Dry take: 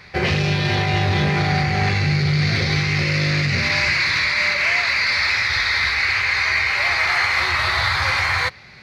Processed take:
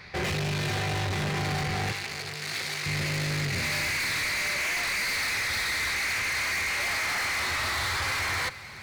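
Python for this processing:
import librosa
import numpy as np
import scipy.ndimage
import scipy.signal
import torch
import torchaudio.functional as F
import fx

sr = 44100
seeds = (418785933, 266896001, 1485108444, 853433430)

p1 = np.clip(x, -10.0 ** (-25.0 / 20.0), 10.0 ** (-25.0 / 20.0))
p2 = fx.highpass(p1, sr, hz=850.0, slope=6, at=(1.92, 2.86))
p3 = p2 + fx.echo_single(p2, sr, ms=424, db=-16.5, dry=0)
y = F.gain(torch.from_numpy(p3), -2.5).numpy()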